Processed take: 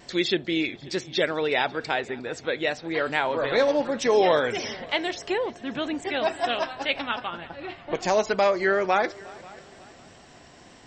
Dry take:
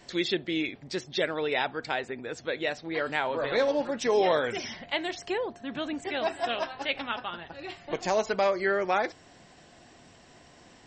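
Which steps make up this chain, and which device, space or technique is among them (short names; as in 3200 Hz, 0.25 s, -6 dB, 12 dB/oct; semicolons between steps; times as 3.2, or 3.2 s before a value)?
7.27–7.95 Bessel low-pass 2700 Hz, order 2; multi-head tape echo (multi-head echo 0.179 s, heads second and third, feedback 41%, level -23.5 dB; wow and flutter 23 cents); gain +4 dB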